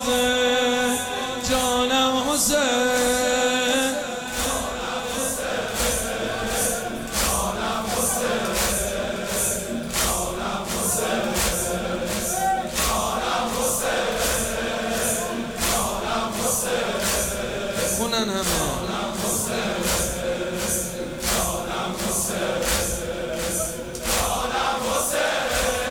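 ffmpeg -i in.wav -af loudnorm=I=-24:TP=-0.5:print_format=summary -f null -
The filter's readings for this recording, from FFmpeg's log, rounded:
Input Integrated:    -22.8 LUFS
Input True Peak:      -9.3 dBTP
Input LRA:             3.5 LU
Input Threshold:     -32.8 LUFS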